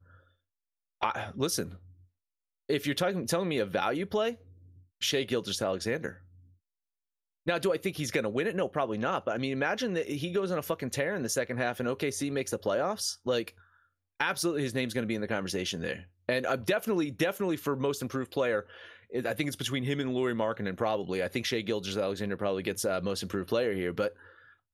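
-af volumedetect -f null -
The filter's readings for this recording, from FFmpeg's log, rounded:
mean_volume: -32.0 dB
max_volume: -13.2 dB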